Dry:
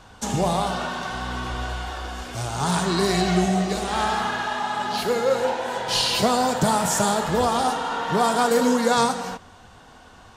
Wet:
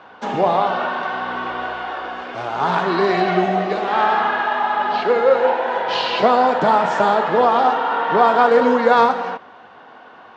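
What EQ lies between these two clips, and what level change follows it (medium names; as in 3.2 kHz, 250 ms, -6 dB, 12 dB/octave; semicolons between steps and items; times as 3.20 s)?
band-pass 350–2500 Hz; distance through air 110 m; +8.0 dB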